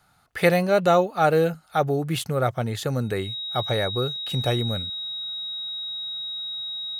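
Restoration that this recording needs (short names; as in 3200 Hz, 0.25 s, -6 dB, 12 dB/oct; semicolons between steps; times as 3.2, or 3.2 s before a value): notch 3800 Hz, Q 30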